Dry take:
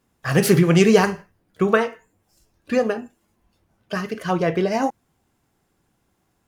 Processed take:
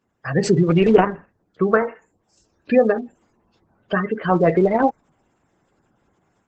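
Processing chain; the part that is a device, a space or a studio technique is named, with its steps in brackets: 2.90–4.33 s: dynamic bell 6.5 kHz, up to -7 dB, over -54 dBFS, Q 1.4; noise-suppressed video call (high-pass 120 Hz 6 dB/octave; spectral gate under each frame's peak -20 dB strong; level rider gain up to 8 dB; trim -1 dB; Opus 12 kbps 48 kHz)

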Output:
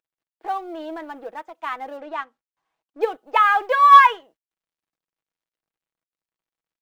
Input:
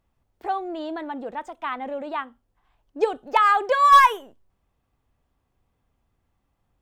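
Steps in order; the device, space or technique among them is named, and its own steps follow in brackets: phone line with mismatched companding (band-pass 320–3500 Hz; companding laws mixed up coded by A); dynamic bell 2.2 kHz, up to +4 dB, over -31 dBFS, Q 0.87; comb 6.2 ms, depth 36%; 1.97–3.01 s: distance through air 58 m

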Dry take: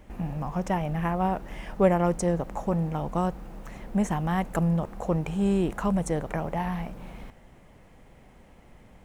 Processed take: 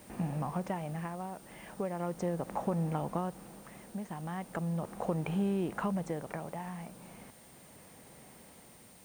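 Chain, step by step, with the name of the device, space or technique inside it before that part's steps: medium wave at night (band-pass 120–3900 Hz; compression, threshold -28 dBFS, peak gain reduction 12.5 dB; tremolo 0.37 Hz, depth 63%; whistle 9 kHz -61 dBFS; white noise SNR 24 dB)

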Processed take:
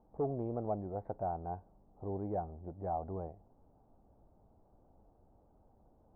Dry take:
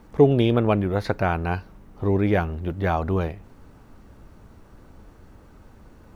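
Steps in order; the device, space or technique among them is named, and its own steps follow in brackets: overdriven synthesiser ladder filter (saturation -11 dBFS, distortion -16 dB; four-pole ladder low-pass 840 Hz, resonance 60%); trim -8 dB

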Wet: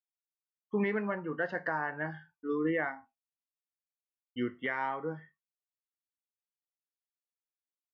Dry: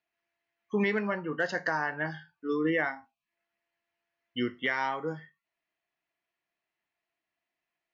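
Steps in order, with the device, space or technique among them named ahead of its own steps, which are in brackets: hearing-loss simulation (low-pass 2 kHz 12 dB/octave; expander -54 dBFS); trim -2.5 dB

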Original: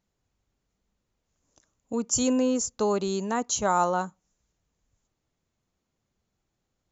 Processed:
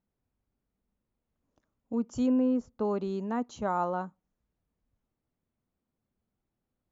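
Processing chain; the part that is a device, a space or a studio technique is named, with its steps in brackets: 2.26–2.85 s: low-pass 2.3 kHz 6 dB/octave; phone in a pocket (low-pass 3.8 kHz 12 dB/octave; peaking EQ 240 Hz +5.5 dB 0.41 oct; treble shelf 2.3 kHz -10 dB); trim -5 dB

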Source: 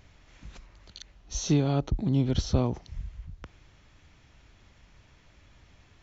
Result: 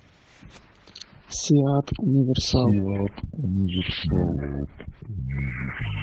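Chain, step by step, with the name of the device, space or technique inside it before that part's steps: ever faster or slower copies 521 ms, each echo -6 st, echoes 3; noise-suppressed video call (high-pass 110 Hz 12 dB/octave; spectral gate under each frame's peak -25 dB strong; trim +6 dB; Opus 12 kbps 48 kHz)

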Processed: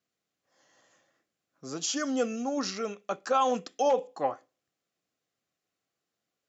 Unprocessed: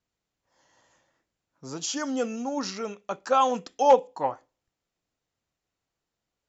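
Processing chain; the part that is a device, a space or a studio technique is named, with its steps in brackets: PA system with an anti-feedback notch (high-pass 160 Hz 12 dB/octave; Butterworth band-stop 920 Hz, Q 6; peak limiter -16.5 dBFS, peak gain reduction 9 dB)

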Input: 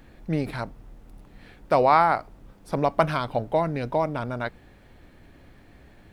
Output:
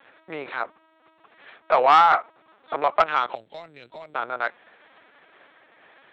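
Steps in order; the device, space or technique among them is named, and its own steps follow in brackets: talking toy (LPC vocoder at 8 kHz pitch kept; high-pass 660 Hz 12 dB/octave; peaking EQ 1.3 kHz +5 dB 0.42 oct; saturation -12.5 dBFS, distortion -14 dB); 3.35–4.15 s: FFT filter 110 Hz 0 dB, 1.1 kHz -24 dB, 6.4 kHz +6 dB; trim +5.5 dB

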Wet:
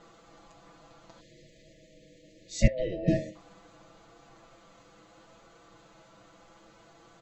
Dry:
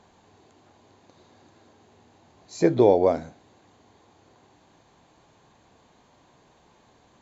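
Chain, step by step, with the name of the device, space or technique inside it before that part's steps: alien voice (ring modulator 390 Hz; flange 0.71 Hz, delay 8.5 ms, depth 1.6 ms, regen +58%); 2.67–3.08 s: three-band isolator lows -23 dB, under 470 Hz, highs -23 dB, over 2.8 kHz; 1.20–3.35 s: spectral selection erased 650–1700 Hz; comb 6 ms, depth 98%; trim +6.5 dB

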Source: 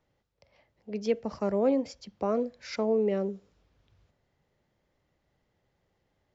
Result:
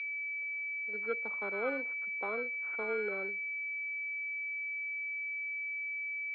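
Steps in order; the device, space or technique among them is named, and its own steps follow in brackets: toy sound module (decimation joined by straight lines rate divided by 6×; class-D stage that switches slowly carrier 2.3 kHz; cabinet simulation 570–4700 Hz, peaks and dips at 630 Hz -9 dB, 1.4 kHz +9 dB, 2.6 kHz +7 dB, 3.8 kHz +6 dB); trim -2.5 dB

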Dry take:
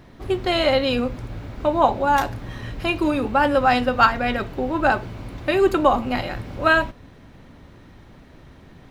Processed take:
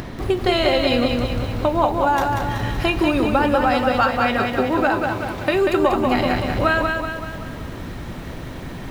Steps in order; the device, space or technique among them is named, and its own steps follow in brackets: upward and downward compression (upward compressor, threshold -31 dBFS; compression, threshold -23 dBFS, peak gain reduction 13 dB); 4.09–5.54 s: high-pass 140 Hz 6 dB/octave; bit-crushed delay 189 ms, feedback 55%, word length 9-bit, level -4 dB; trim +7 dB

